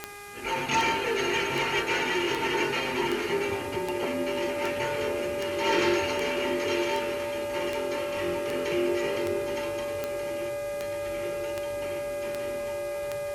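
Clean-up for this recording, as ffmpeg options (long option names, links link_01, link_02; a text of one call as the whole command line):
ffmpeg -i in.wav -af "adeclick=threshold=4,bandreject=frequency=408:width_type=h:width=4,bandreject=frequency=816:width_type=h:width=4,bandreject=frequency=1224:width_type=h:width=4,bandreject=frequency=1632:width_type=h:width=4,bandreject=frequency=2040:width_type=h:width=4,bandreject=frequency=2448:width_type=h:width=4,bandreject=frequency=580:width=30,afwtdn=0.004" out.wav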